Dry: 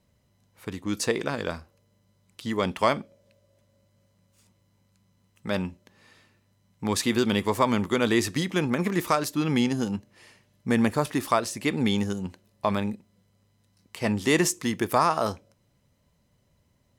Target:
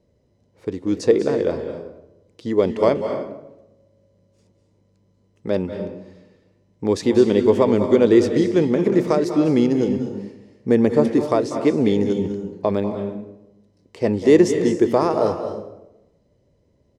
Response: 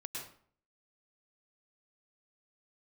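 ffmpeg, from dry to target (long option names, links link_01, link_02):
-filter_complex "[0:a]firequalizer=gain_entry='entry(210,0);entry(310,7);entry(440,10);entry(730,-1);entry(1300,-9);entry(1900,-6);entry(2800,-9);entry(5200,-5);entry(12000,-21)':delay=0.05:min_phase=1,asplit=2[link_01][link_02];[1:a]atrim=start_sample=2205,asetrate=23373,aresample=44100[link_03];[link_02][link_03]afir=irnorm=-1:irlink=0,volume=-6dB[link_04];[link_01][link_04]amix=inputs=2:normalize=0"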